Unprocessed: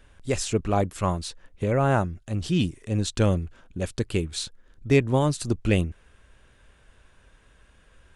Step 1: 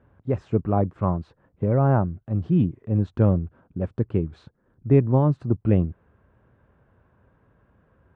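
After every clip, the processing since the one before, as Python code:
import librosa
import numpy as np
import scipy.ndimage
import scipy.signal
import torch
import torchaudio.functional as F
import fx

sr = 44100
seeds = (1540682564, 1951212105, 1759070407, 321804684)

y = scipy.signal.sosfilt(scipy.signal.cheby1(2, 1.0, [110.0, 1100.0], 'bandpass', fs=sr, output='sos'), x)
y = fx.low_shelf(y, sr, hz=350.0, db=7.5)
y = F.gain(torch.from_numpy(y), -1.5).numpy()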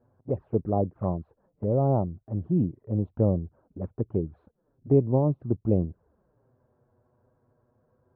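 y = scipy.signal.sosfilt(scipy.signal.bessel(2, 860.0, 'lowpass', norm='mag', fs=sr, output='sos'), x)
y = fx.env_flanger(y, sr, rest_ms=8.5, full_db=-19.0)
y = fx.peak_eq(y, sr, hz=610.0, db=7.5, octaves=2.1)
y = F.gain(torch.from_numpy(y), -6.0).numpy()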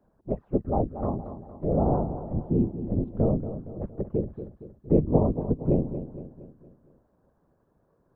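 y = fx.whisperise(x, sr, seeds[0])
y = fx.echo_feedback(y, sr, ms=232, feedback_pct=48, wet_db=-11)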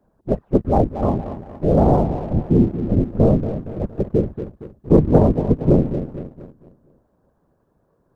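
y = fx.leveller(x, sr, passes=1)
y = F.gain(torch.from_numpy(y), 5.5).numpy()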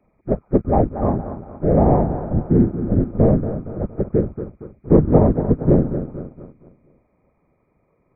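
y = fx.freq_compress(x, sr, knee_hz=1200.0, ratio=4.0)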